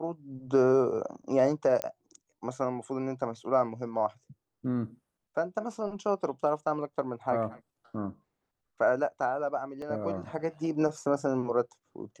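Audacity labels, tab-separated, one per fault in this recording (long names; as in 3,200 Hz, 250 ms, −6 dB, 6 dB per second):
1.820000	1.820000	click −15 dBFS
9.820000	9.820000	drop-out 2.1 ms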